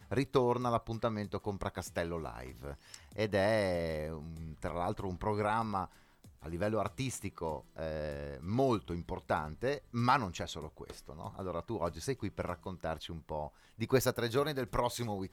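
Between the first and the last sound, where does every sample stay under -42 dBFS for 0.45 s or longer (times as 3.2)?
5.85–6.44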